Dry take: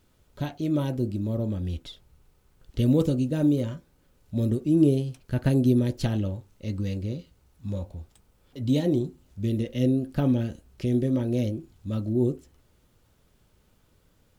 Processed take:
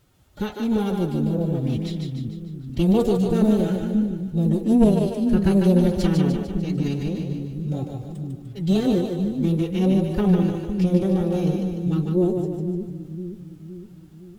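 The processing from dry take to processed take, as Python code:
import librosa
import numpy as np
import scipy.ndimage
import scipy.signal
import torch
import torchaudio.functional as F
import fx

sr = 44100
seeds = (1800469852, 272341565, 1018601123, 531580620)

y = fx.tube_stage(x, sr, drive_db=13.0, bias=0.75)
y = fx.pitch_keep_formants(y, sr, semitones=6.5)
y = fx.echo_split(y, sr, split_hz=320.0, low_ms=514, high_ms=149, feedback_pct=52, wet_db=-4)
y = F.gain(torch.from_numpy(y), 8.5).numpy()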